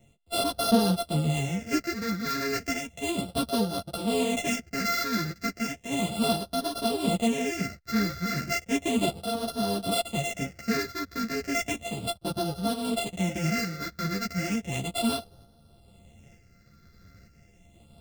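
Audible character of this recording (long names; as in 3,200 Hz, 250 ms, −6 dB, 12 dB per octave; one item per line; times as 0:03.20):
a buzz of ramps at a fixed pitch in blocks of 64 samples
phaser sweep stages 6, 0.34 Hz, lowest notch 790–2,100 Hz
tremolo saw up 1.1 Hz, depth 45%
a shimmering, thickened sound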